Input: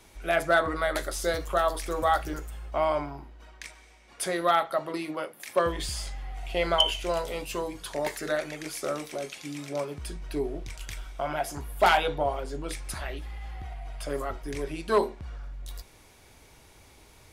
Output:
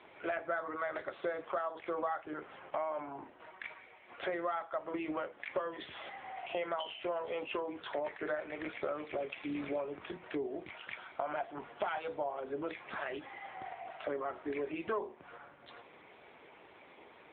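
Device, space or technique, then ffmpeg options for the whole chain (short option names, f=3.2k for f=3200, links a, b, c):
voicemail: -af "highpass=320,lowpass=2.7k,acompressor=threshold=-38dB:ratio=6,volume=4.5dB" -ar 8000 -c:a libopencore_amrnb -b:a 7950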